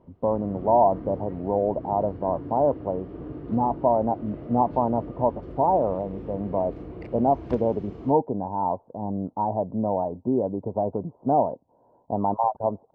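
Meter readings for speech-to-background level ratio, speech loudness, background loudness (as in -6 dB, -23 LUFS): 13.5 dB, -25.5 LUFS, -39.0 LUFS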